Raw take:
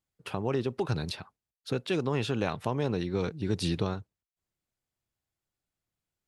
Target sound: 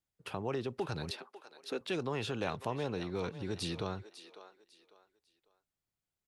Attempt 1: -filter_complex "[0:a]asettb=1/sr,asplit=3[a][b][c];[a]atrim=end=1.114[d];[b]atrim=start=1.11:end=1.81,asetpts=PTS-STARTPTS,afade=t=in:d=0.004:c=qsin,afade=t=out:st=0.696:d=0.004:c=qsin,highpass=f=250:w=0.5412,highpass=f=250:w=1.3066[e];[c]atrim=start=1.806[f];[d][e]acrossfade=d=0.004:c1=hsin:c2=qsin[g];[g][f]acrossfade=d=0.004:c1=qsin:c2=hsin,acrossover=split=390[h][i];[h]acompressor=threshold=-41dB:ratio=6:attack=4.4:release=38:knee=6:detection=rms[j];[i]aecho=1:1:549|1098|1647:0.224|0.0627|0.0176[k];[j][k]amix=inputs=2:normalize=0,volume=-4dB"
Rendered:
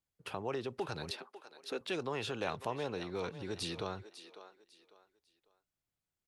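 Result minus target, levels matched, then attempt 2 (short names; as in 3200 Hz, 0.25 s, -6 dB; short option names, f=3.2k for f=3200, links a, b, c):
compressor: peak gain reduction +6 dB
-filter_complex "[0:a]asettb=1/sr,asplit=3[a][b][c];[a]atrim=end=1.114[d];[b]atrim=start=1.11:end=1.81,asetpts=PTS-STARTPTS,afade=t=in:d=0.004:c=qsin,afade=t=out:st=0.696:d=0.004:c=qsin,highpass=f=250:w=0.5412,highpass=f=250:w=1.3066[e];[c]atrim=start=1.806[f];[d][e]acrossfade=d=0.004:c1=hsin:c2=qsin[g];[g][f]acrossfade=d=0.004:c1=qsin:c2=hsin,acrossover=split=390[h][i];[h]acompressor=threshold=-33.5dB:ratio=6:attack=4.4:release=38:knee=6:detection=rms[j];[i]aecho=1:1:549|1098|1647:0.224|0.0627|0.0176[k];[j][k]amix=inputs=2:normalize=0,volume=-4dB"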